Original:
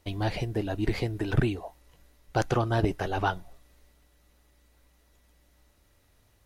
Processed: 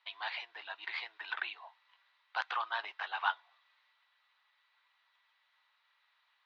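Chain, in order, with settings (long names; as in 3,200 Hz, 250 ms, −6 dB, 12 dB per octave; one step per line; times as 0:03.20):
elliptic band-pass filter 960–3,900 Hz, stop band 70 dB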